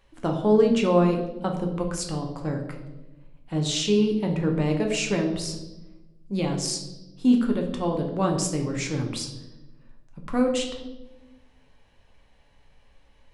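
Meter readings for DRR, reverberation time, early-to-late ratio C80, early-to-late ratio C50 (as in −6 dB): 1.5 dB, 1.0 s, 9.5 dB, 7.0 dB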